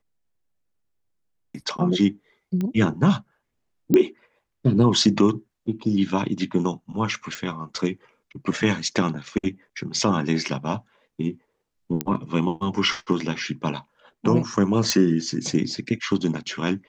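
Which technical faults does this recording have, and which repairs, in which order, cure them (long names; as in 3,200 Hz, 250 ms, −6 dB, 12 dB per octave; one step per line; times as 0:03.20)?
0:02.61: click −16 dBFS
0:03.94: click −7 dBFS
0:07.35: click
0:12.01: click −8 dBFS
0:14.90: click −5 dBFS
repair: click removal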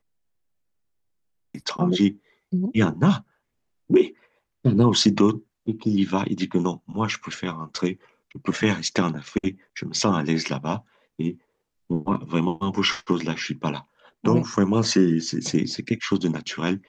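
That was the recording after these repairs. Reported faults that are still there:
none of them is left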